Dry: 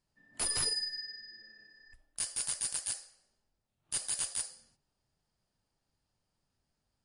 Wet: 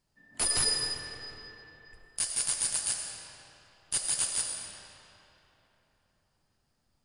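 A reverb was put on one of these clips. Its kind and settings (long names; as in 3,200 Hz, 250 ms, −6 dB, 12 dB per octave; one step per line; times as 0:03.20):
comb and all-pass reverb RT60 3.5 s, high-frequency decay 0.7×, pre-delay 55 ms, DRR 2.5 dB
level +4.5 dB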